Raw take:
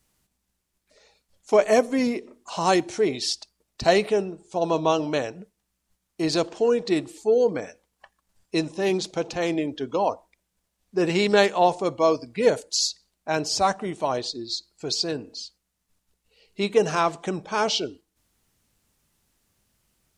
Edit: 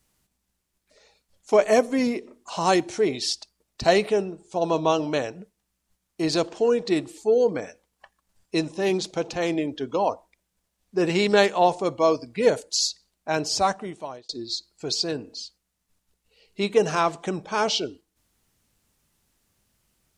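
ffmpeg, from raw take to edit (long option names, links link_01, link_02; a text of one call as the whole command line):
ffmpeg -i in.wav -filter_complex "[0:a]asplit=2[link_01][link_02];[link_01]atrim=end=14.29,asetpts=PTS-STARTPTS,afade=type=out:start_time=13.61:duration=0.68[link_03];[link_02]atrim=start=14.29,asetpts=PTS-STARTPTS,afade=type=in:duration=0.004:curve=hsin[link_04];[link_03][link_04]concat=n=2:v=0:a=1" out.wav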